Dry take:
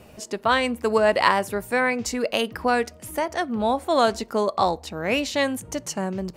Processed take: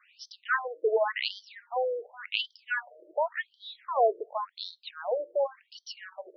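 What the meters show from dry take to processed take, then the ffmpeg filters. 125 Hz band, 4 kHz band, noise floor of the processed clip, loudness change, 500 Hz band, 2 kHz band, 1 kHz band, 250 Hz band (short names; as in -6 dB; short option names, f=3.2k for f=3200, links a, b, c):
under -40 dB, -6.5 dB, -73 dBFS, -7.5 dB, -7.0 dB, -7.5 dB, -9.5 dB, under -30 dB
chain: -af "lowpass=5.7k,afftfilt=real='re*between(b*sr/1024,440*pow(4400/440,0.5+0.5*sin(2*PI*0.9*pts/sr))/1.41,440*pow(4400/440,0.5+0.5*sin(2*PI*0.9*pts/sr))*1.41)':imag='im*between(b*sr/1024,440*pow(4400/440,0.5+0.5*sin(2*PI*0.9*pts/sr))/1.41,440*pow(4400/440,0.5+0.5*sin(2*PI*0.9*pts/sr))*1.41)':win_size=1024:overlap=0.75,volume=-1.5dB"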